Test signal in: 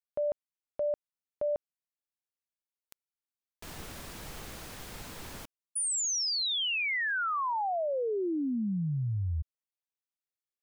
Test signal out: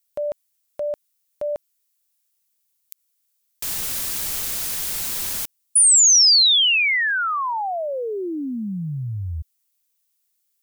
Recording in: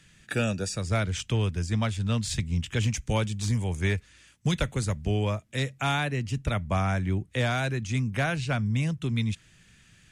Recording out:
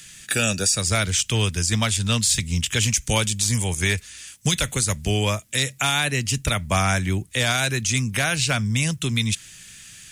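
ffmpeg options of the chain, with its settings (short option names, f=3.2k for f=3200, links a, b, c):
-af "crystalizer=i=7:c=0,alimiter=limit=-13.5dB:level=0:latency=1:release=69,volume=3.5dB"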